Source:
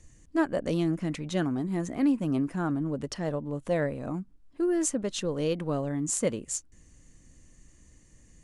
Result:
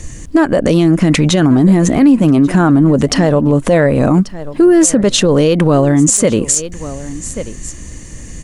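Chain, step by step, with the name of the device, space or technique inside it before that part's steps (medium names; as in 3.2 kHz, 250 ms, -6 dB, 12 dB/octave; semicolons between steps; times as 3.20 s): 1.40–2.23 s: bass shelf 170 Hz +4.5 dB; delay 1137 ms -22.5 dB; loud club master (compression 2.5:1, threshold -30 dBFS, peak gain reduction 7.5 dB; hard clipper -18.5 dBFS, distortion -47 dB; loudness maximiser +27.5 dB); trim -1 dB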